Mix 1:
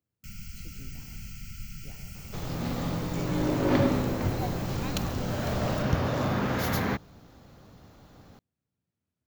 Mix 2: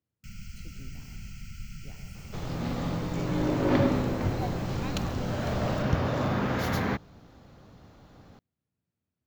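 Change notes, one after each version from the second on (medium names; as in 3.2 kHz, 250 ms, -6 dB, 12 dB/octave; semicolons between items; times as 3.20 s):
master: add treble shelf 8.4 kHz -11 dB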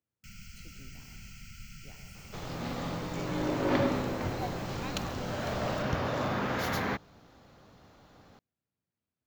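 master: add bass shelf 320 Hz -8 dB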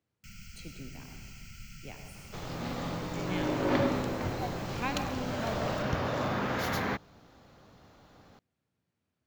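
speech +9.0 dB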